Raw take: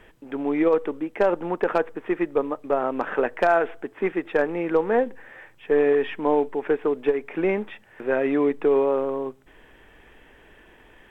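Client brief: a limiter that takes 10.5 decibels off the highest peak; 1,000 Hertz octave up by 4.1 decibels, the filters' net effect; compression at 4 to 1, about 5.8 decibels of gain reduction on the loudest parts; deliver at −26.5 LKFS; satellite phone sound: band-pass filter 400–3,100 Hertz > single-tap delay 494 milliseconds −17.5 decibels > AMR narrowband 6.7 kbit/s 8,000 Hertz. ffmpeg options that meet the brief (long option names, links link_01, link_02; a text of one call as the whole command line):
ffmpeg -i in.wav -af "equalizer=frequency=1000:width_type=o:gain=6,acompressor=threshold=-20dB:ratio=4,alimiter=limit=-19.5dB:level=0:latency=1,highpass=400,lowpass=3100,aecho=1:1:494:0.133,volume=6.5dB" -ar 8000 -c:a libopencore_amrnb -b:a 6700 out.amr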